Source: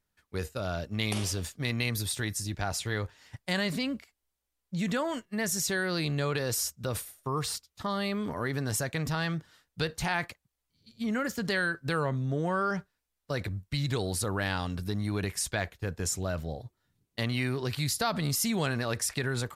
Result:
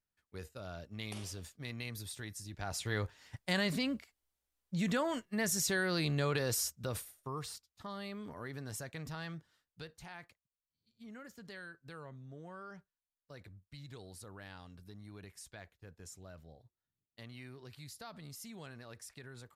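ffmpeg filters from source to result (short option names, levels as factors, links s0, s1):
-af "volume=0.708,afade=t=in:st=2.51:d=0.48:silence=0.334965,afade=t=out:st=6.43:d=1.12:silence=0.334965,afade=t=out:st=9.37:d=0.61:silence=0.421697"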